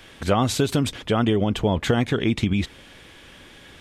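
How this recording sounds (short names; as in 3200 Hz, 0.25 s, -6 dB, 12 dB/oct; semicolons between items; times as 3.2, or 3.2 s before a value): noise floor -47 dBFS; spectral tilt -5.5 dB/oct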